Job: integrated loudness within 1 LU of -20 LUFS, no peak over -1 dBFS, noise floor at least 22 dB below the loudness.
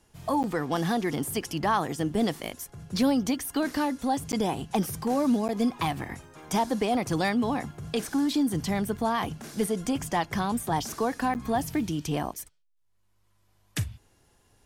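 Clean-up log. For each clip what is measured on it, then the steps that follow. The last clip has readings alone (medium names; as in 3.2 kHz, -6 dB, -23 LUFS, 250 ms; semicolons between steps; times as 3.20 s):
dropouts 4; longest dropout 9.5 ms; loudness -28.5 LUFS; peak level -14.0 dBFS; loudness target -20.0 LUFS
-> interpolate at 0.43/4.32/5.48/11.34 s, 9.5 ms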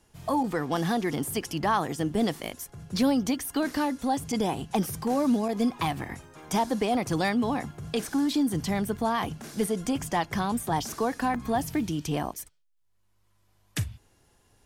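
dropouts 0; loudness -28.5 LUFS; peak level -14.0 dBFS; loudness target -20.0 LUFS
-> trim +8.5 dB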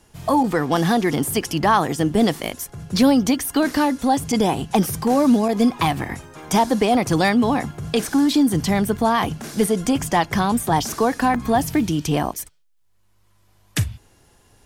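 loudness -20.0 LUFS; peak level -5.5 dBFS; noise floor -58 dBFS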